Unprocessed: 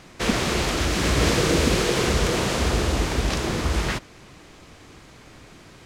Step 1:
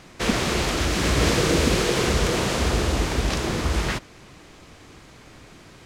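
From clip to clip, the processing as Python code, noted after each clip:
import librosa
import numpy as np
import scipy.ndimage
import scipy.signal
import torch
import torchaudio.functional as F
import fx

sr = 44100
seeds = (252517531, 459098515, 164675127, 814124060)

y = x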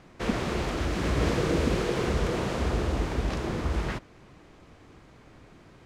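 y = fx.high_shelf(x, sr, hz=2600.0, db=-11.5)
y = y * 10.0 ** (-4.5 / 20.0)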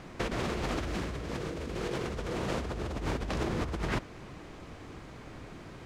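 y = fx.over_compress(x, sr, threshold_db=-34.0, ratio=-1.0)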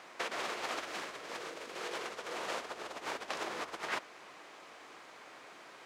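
y = scipy.signal.sosfilt(scipy.signal.butter(2, 670.0, 'highpass', fs=sr, output='sos'), x)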